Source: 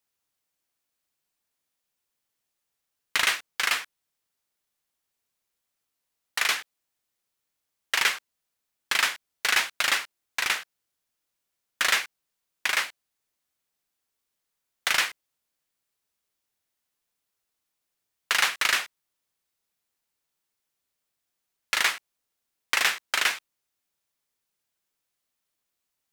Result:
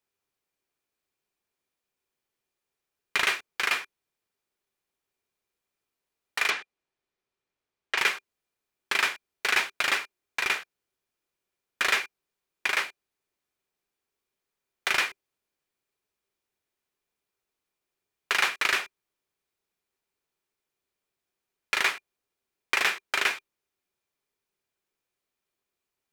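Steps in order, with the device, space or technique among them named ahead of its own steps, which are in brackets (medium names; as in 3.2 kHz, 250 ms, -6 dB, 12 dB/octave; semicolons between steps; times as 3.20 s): 6.50–7.98 s: distance through air 80 m; inside a helmet (treble shelf 3.7 kHz -7.5 dB; small resonant body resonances 390/2400 Hz, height 9 dB)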